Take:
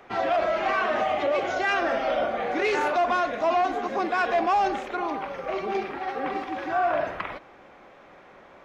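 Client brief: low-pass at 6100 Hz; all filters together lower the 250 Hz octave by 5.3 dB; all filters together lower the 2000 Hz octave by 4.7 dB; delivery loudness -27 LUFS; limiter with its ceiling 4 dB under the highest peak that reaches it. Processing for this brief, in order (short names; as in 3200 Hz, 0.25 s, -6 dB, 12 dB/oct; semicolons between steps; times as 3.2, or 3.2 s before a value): LPF 6100 Hz; bell 250 Hz -8 dB; bell 2000 Hz -6.5 dB; gain +2.5 dB; limiter -18 dBFS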